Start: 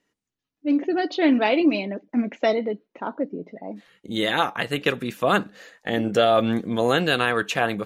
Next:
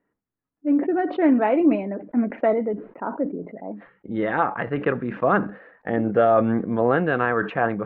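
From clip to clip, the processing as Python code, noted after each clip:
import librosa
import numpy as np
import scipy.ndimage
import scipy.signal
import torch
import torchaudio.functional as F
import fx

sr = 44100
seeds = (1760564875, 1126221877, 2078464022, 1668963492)

y = scipy.signal.sosfilt(scipy.signal.butter(4, 1700.0, 'lowpass', fs=sr, output='sos'), x)
y = fx.sustainer(y, sr, db_per_s=130.0)
y = y * 10.0 ** (1.0 / 20.0)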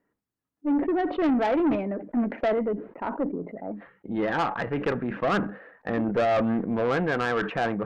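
y = fx.tube_stage(x, sr, drive_db=19.0, bias=0.2)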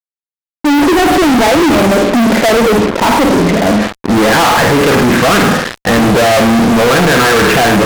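y = fx.room_flutter(x, sr, wall_m=8.9, rt60_s=0.53)
y = fx.fuzz(y, sr, gain_db=47.0, gate_db=-44.0)
y = y * 10.0 ** (5.5 / 20.0)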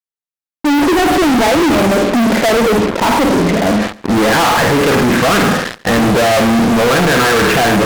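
y = x + 10.0 ** (-22.5 / 20.0) * np.pad(x, (int(140 * sr / 1000.0), 0))[:len(x)]
y = y * 10.0 ** (-2.5 / 20.0)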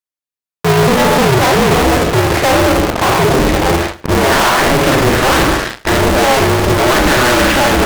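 y = fx.doubler(x, sr, ms=41.0, db=-8.5)
y = y * np.sign(np.sin(2.0 * np.pi * 130.0 * np.arange(len(y)) / sr))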